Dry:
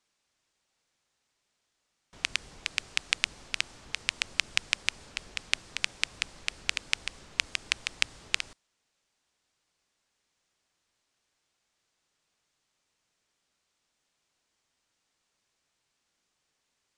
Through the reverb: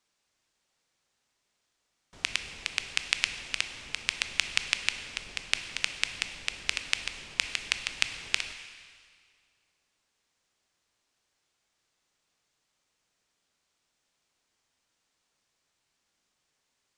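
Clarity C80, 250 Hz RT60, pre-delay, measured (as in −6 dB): 10.5 dB, 2.1 s, 8 ms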